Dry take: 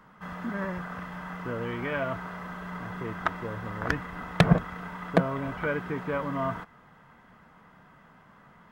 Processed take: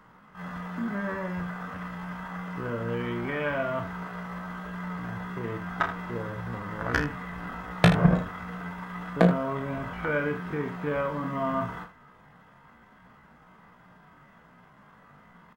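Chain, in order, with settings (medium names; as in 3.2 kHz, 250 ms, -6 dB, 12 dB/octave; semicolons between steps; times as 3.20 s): tempo 0.56×; early reflections 34 ms -7.5 dB, 79 ms -11.5 dB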